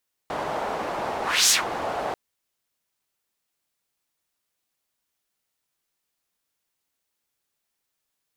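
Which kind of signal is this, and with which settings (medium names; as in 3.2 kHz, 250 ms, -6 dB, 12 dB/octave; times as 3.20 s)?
whoosh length 1.84 s, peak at 1.20 s, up 0.29 s, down 0.15 s, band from 740 Hz, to 6.8 kHz, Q 1.8, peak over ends 12 dB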